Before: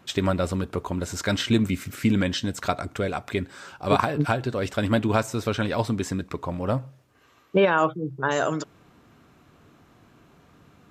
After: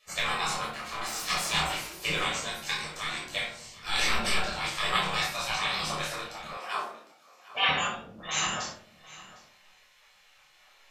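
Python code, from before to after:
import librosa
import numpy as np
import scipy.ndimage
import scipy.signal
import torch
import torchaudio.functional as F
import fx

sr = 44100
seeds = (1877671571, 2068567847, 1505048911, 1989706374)

y = fx.lower_of_two(x, sr, delay_ms=7.7, at=(0.62, 1.74))
y = fx.transient(y, sr, attack_db=-4, sustain_db=9, at=(3.86, 4.38))
y = fx.high_shelf(y, sr, hz=8700.0, db=-7.5)
y = fx.spec_gate(y, sr, threshold_db=-20, keep='weak')
y = fx.doubler(y, sr, ms=27.0, db=-4.0)
y = y + 10.0 ** (-17.5 / 20.0) * np.pad(y, (int(756 * sr / 1000.0), 0))[:len(y)]
y = fx.room_shoebox(y, sr, seeds[0], volume_m3=690.0, walls='furnished', distance_m=5.9)
y = fx.dynamic_eq(y, sr, hz=6700.0, q=0.75, threshold_db=-46.0, ratio=4.0, max_db=4)
y = fx.highpass(y, sr, hz=440.0, slope=12, at=(6.57, 7.69))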